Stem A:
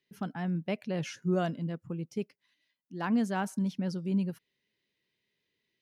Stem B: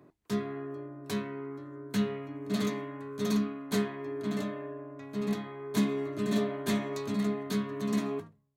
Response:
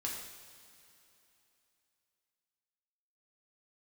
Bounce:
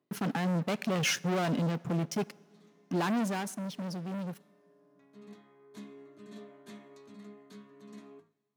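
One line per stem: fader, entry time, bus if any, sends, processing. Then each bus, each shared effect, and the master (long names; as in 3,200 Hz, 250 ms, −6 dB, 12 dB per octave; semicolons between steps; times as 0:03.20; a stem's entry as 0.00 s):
0:03.07 −3 dB → 0:03.46 −13.5 dB, 0.00 s, send −21.5 dB, leveller curve on the samples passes 5
−19.5 dB, 0.00 s, send −16.5 dB, low-pass filter 11,000 Hz; automatic ducking −19 dB, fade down 0.20 s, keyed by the first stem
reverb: on, pre-delay 3 ms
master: high-pass filter 160 Hz 12 dB per octave; brickwall limiter −21.5 dBFS, peak gain reduction 5.5 dB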